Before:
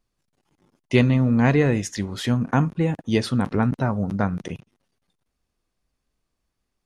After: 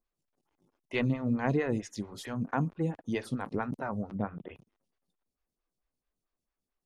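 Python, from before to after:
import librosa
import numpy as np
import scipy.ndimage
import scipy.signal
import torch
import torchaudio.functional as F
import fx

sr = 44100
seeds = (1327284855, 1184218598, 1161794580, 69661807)

y = fx.steep_lowpass(x, sr, hz=3600.0, slope=96, at=(4.14, 4.54), fade=0.02)
y = fx.stagger_phaser(y, sr, hz=4.5)
y = y * 10.0 ** (-7.5 / 20.0)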